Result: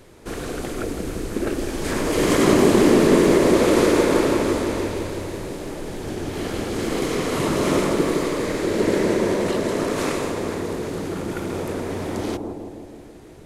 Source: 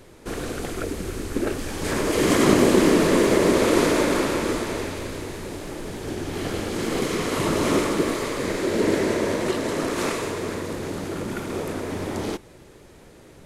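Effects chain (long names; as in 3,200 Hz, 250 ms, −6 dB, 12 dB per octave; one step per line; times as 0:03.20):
bucket-brigade delay 161 ms, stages 1,024, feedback 65%, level −4 dB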